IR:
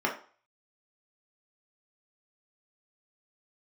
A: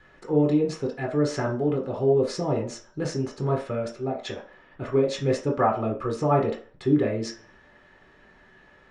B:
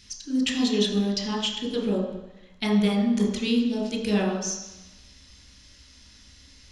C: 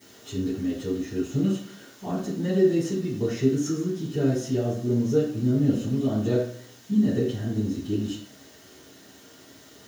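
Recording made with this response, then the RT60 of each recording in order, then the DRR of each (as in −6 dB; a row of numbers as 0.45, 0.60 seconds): A; 0.40, 1.0, 0.55 seconds; −2.0, 0.5, −17.0 decibels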